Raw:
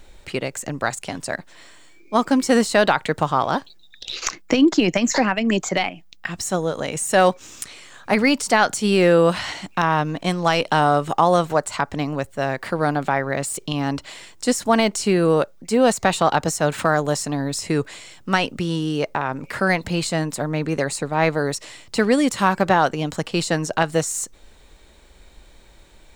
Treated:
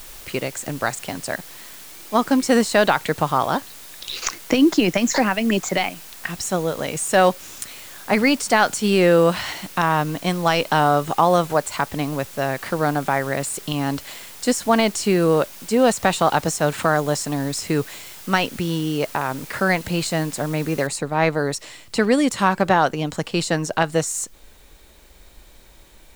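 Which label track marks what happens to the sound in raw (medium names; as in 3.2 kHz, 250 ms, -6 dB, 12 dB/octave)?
20.870000	20.870000	noise floor step -41 dB -57 dB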